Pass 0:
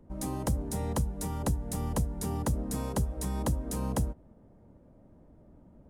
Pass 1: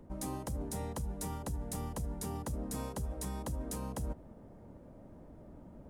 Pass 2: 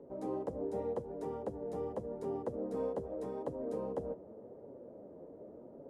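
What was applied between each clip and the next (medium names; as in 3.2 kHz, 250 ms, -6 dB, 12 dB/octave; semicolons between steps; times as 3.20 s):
bass shelf 350 Hz -4 dB; reverse; compression 12:1, threshold -41 dBFS, peak gain reduction 15 dB; reverse; trim +6.5 dB
band-pass filter 460 Hz, Q 3; flange 0.86 Hz, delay 7 ms, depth 4.5 ms, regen -28%; on a send at -22 dB: reverberation RT60 1.7 s, pre-delay 5 ms; on the sum: trim +14.5 dB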